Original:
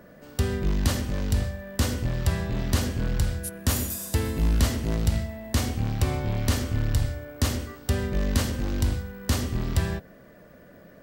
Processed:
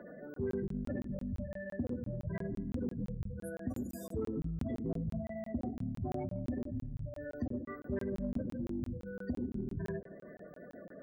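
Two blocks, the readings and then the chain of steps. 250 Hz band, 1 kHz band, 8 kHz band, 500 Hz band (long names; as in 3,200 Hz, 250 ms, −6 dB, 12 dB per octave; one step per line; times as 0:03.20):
−6.5 dB, −14.0 dB, −29.0 dB, −6.5 dB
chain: gate on every frequency bin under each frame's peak −15 dB strong
three-way crossover with the lows and the highs turned down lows −17 dB, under 170 Hz, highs −18 dB, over 3,300 Hz
in parallel at 0 dB: downward compressor, threshold −44 dBFS, peak gain reduction 17 dB
on the sum: flanger 0.74 Hz, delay 3.2 ms, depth 6.3 ms, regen −66%
soft clipping −24 dBFS, distortion −25 dB
on a send: feedback echo with a low-pass in the loop 79 ms, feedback 76%, low-pass 3,000 Hz, level −21 dB
on the sum: regular buffer underruns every 0.17 s, samples 1,024, zero, from 0:00.34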